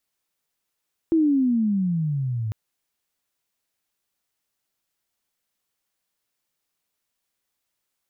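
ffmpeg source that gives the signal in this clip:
ffmpeg -f lavfi -i "aevalsrc='pow(10,(-15-9*t/1.4)/20)*sin(2*PI*334*1.4/(-20*log(2)/12)*(exp(-20*log(2)/12*t/1.4)-1))':duration=1.4:sample_rate=44100" out.wav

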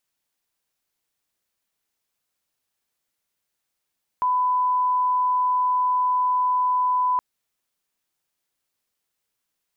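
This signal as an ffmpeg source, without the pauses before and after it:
ffmpeg -f lavfi -i "sine=frequency=1000:duration=2.97:sample_rate=44100,volume=0.06dB" out.wav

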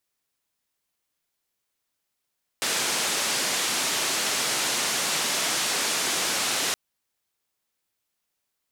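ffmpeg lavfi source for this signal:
ffmpeg -f lavfi -i "anoisesrc=color=white:duration=4.12:sample_rate=44100:seed=1,highpass=frequency=190,lowpass=frequency=8000,volume=-16.8dB" out.wav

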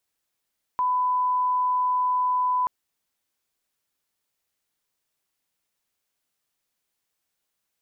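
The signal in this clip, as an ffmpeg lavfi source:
ffmpeg -f lavfi -i "sine=frequency=1000:duration=1.88:sample_rate=44100,volume=-1.94dB" out.wav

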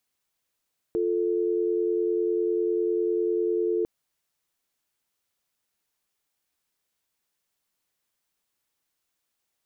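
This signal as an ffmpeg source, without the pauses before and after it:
ffmpeg -f lavfi -i "aevalsrc='0.0562*(sin(2*PI*350*t)+sin(2*PI*440*t))':duration=2.9:sample_rate=44100" out.wav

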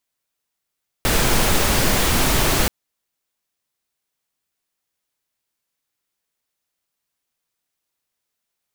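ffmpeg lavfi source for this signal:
ffmpeg -f lavfi -i "anoisesrc=color=pink:amplitude=0.724:duration=1.63:sample_rate=44100:seed=1" out.wav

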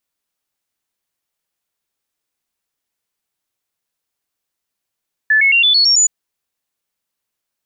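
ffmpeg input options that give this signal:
ffmpeg -f lavfi -i "aevalsrc='0.376*clip(min(mod(t,0.11),0.11-mod(t,0.11))/0.005,0,1)*sin(2*PI*1740*pow(2,floor(t/0.11)/3)*mod(t,0.11))':duration=0.77:sample_rate=44100" out.wav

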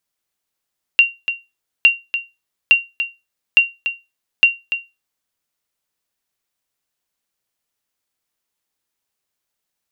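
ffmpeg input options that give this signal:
ffmpeg -f lavfi -i "aevalsrc='0.794*(sin(2*PI*2760*mod(t,0.86))*exp(-6.91*mod(t,0.86)/0.23)+0.299*sin(2*PI*2760*max(mod(t,0.86)-0.29,0))*exp(-6.91*max(mod(t,0.86)-0.29,0)/0.23))':duration=4.3:sample_rate=44100" out.wav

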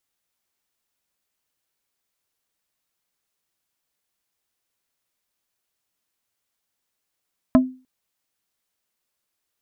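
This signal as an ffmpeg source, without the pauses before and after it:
ffmpeg -f lavfi -i "aevalsrc='0.422*pow(10,-3*t/0.34)*sin(2*PI*257*t)+0.224*pow(10,-3*t/0.113)*sin(2*PI*642.5*t)+0.119*pow(10,-3*t/0.064)*sin(2*PI*1028*t)+0.0631*pow(10,-3*t/0.049)*sin(2*PI*1285*t)+0.0335*pow(10,-3*t/0.036)*sin(2*PI*1670.5*t)':duration=0.3:sample_rate=44100" out.wav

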